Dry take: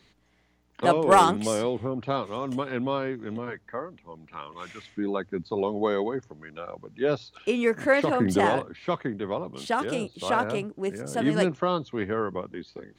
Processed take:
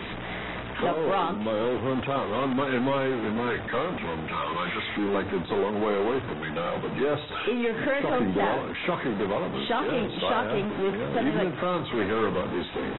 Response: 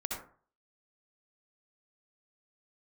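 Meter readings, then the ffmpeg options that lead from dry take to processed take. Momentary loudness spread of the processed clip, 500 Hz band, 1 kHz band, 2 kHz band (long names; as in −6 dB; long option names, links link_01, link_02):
5 LU, 0.0 dB, −2.0 dB, +1.5 dB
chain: -filter_complex "[0:a]aeval=exprs='val(0)+0.5*0.0422*sgn(val(0))':channel_layout=same,lowshelf=frequency=130:gain=-10,alimiter=limit=-17.5dB:level=0:latency=1:release=287,adynamicsmooth=sensitivity=6:basefreq=1500,aeval=exprs='(tanh(11.2*val(0)+0.15)-tanh(0.15))/11.2':channel_layout=same,bandreject=frequency=150.4:width_type=h:width=4,bandreject=frequency=300.8:width_type=h:width=4,bandreject=frequency=451.2:width_type=h:width=4,bandreject=frequency=601.6:width_type=h:width=4,bandreject=frequency=752:width_type=h:width=4,bandreject=frequency=902.4:width_type=h:width=4,bandreject=frequency=1052.8:width_type=h:width=4,bandreject=frequency=1203.2:width_type=h:width=4,bandreject=frequency=1353.6:width_type=h:width=4,bandreject=frequency=1504:width_type=h:width=4,bandreject=frequency=1654.4:width_type=h:width=4,bandreject=frequency=1804.8:width_type=h:width=4,bandreject=frequency=1955.2:width_type=h:width=4,bandreject=frequency=2105.6:width_type=h:width=4,bandreject=frequency=2256:width_type=h:width=4,bandreject=frequency=2406.4:width_type=h:width=4,bandreject=frequency=2556.8:width_type=h:width=4,bandreject=frequency=2707.2:width_type=h:width=4,bandreject=frequency=2857.6:width_type=h:width=4,bandreject=frequency=3008:width_type=h:width=4,bandreject=frequency=3158.4:width_type=h:width=4,bandreject=frequency=3308.8:width_type=h:width=4,bandreject=frequency=3459.2:width_type=h:width=4,bandreject=frequency=3609.6:width_type=h:width=4,bandreject=frequency=3760:width_type=h:width=4,bandreject=frequency=3910.4:width_type=h:width=4,bandreject=frequency=4060.8:width_type=h:width=4,bandreject=frequency=4211.2:width_type=h:width=4,bandreject=frequency=4361.6:width_type=h:width=4,bandreject=frequency=4512:width_type=h:width=4,bandreject=frequency=4662.4:width_type=h:width=4,bandreject=frequency=4812.8:width_type=h:width=4,asplit=2[link_01][link_02];[link_02]aecho=0:1:90:0.0794[link_03];[link_01][link_03]amix=inputs=2:normalize=0,volume=2.5dB" -ar 22050 -c:a aac -b:a 16k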